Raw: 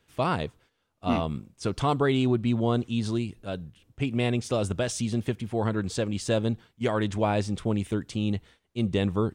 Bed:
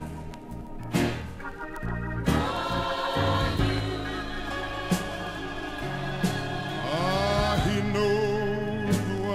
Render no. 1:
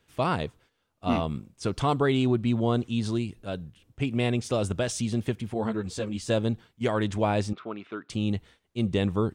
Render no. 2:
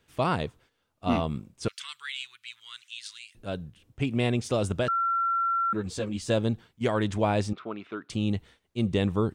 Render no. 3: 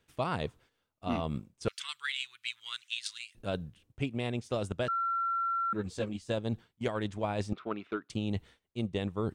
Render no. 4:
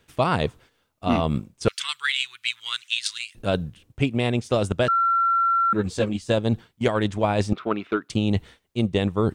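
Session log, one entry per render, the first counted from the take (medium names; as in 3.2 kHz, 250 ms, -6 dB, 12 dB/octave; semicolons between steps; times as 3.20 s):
5.54–6.30 s: three-phase chorus; 7.53–8.10 s: cabinet simulation 440–3400 Hz, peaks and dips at 510 Hz -8 dB, 840 Hz -6 dB, 1.3 kHz +9 dB, 1.9 kHz -6 dB, 3.1 kHz -7 dB
1.68–3.35 s: inverse Chebyshev high-pass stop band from 690 Hz, stop band 50 dB; 4.88–5.73 s: bleep 1.36 kHz -23 dBFS
transient shaper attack +9 dB, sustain -3 dB; reverse; compression 6:1, threshold -30 dBFS, peak gain reduction 16 dB; reverse
trim +11 dB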